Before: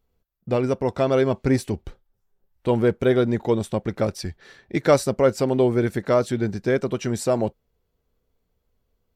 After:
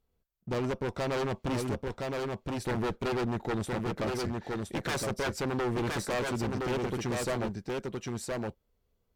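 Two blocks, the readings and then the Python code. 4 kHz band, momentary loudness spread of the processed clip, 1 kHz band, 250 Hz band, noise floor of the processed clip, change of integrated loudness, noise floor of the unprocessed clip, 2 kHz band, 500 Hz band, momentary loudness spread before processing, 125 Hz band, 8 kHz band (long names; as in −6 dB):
−2.5 dB, 5 LU, −5.5 dB, −9.0 dB, −76 dBFS, −10.5 dB, −74 dBFS, −3.5 dB, −11.5 dB, 9 LU, −8.0 dB, −4.5 dB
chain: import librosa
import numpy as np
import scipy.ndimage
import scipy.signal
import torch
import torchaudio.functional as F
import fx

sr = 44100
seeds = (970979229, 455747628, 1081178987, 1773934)

y = 10.0 ** (-17.0 / 20.0) * (np.abs((x / 10.0 ** (-17.0 / 20.0) + 3.0) % 4.0 - 2.0) - 1.0)
y = y + 10.0 ** (-4.0 / 20.0) * np.pad(y, (int(1017 * sr / 1000.0), 0))[:len(y)]
y = fx.clip_asym(y, sr, top_db=-29.0, bottom_db=-18.0)
y = y * librosa.db_to_amplitude(-5.0)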